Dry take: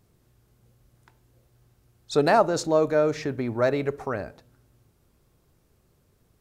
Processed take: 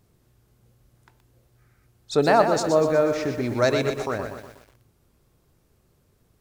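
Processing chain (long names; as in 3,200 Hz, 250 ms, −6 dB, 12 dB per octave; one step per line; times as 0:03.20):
0:01.59–0:01.86: gain on a spectral selection 1,200–2,500 Hz +10 dB
0:03.44–0:04.11: parametric band 6,200 Hz +14 dB 1.9 octaves
feedback echo at a low word length 122 ms, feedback 55%, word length 8 bits, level −7 dB
level +1 dB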